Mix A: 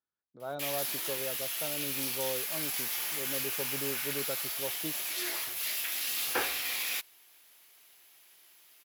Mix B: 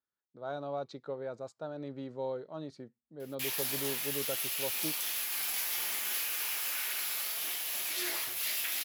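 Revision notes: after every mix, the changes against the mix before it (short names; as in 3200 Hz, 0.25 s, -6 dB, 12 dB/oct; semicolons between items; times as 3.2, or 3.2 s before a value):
background: entry +2.80 s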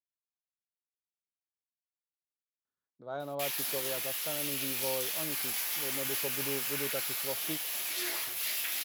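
speech: entry +2.65 s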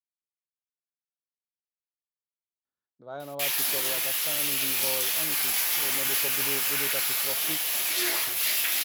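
background +8.0 dB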